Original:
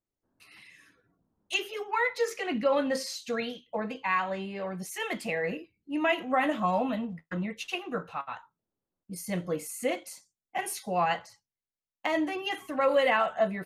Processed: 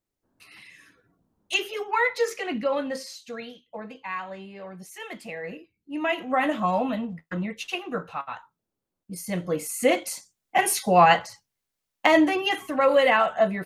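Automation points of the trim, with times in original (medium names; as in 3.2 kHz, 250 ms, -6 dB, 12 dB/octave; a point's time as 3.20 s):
2.15 s +4.5 dB
3.29 s -5 dB
5.37 s -5 dB
6.43 s +3 dB
9.40 s +3 dB
10.05 s +11 dB
12.06 s +11 dB
12.81 s +5 dB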